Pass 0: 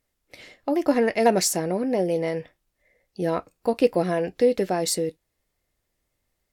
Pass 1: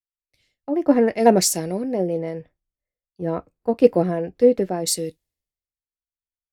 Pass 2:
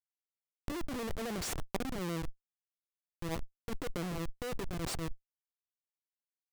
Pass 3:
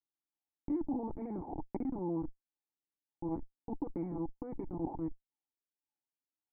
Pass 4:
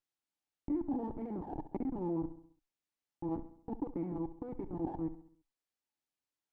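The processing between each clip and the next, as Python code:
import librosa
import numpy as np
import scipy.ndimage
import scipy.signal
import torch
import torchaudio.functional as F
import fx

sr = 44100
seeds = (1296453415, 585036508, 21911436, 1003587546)

y1 = fx.tilt_shelf(x, sr, db=4.5, hz=710.0)
y1 = fx.band_widen(y1, sr, depth_pct=100)
y1 = F.gain(torch.from_numpy(y1), -1.0).numpy()
y2 = fx.schmitt(y1, sr, flips_db=-23.5)
y2 = fx.over_compress(y2, sr, threshold_db=-34.0, ratio=-1.0)
y2 = F.gain(torch.from_numpy(y2), -2.0).numpy()
y3 = fx.formant_cascade(y2, sr, vowel='u')
y3 = fx.filter_lfo_lowpass(y3, sr, shape='sine', hz=1.8, low_hz=760.0, high_hz=2200.0, q=4.9)
y3 = F.gain(torch.from_numpy(y3), 8.5).numpy()
y4 = fx.echo_feedback(y3, sr, ms=67, feedback_pct=50, wet_db=-14)
y4 = fx.running_max(y4, sr, window=3)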